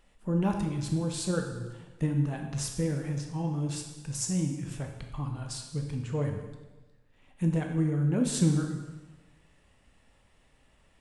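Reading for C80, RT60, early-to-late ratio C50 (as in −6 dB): 7.5 dB, 1.2 s, 5.0 dB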